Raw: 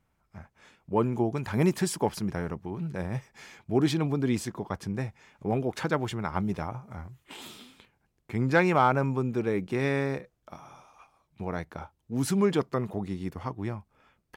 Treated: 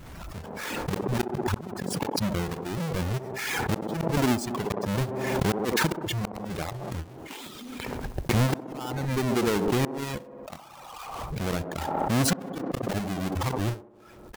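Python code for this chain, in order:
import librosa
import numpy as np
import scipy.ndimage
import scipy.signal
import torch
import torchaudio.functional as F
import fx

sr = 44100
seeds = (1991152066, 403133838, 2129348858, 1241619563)

y = fx.halfwave_hold(x, sr)
y = fx.dereverb_blind(y, sr, rt60_s=1.1)
y = fx.peak_eq(y, sr, hz=140.0, db=5.5, octaves=3.0, at=(1.27, 2.01))
y = fx.gate_flip(y, sr, shuts_db=-17.0, range_db=-41)
y = fx.echo_wet_bandpass(y, sr, ms=64, feedback_pct=55, hz=470.0, wet_db=-10.5)
y = fx.pre_swell(y, sr, db_per_s=27.0)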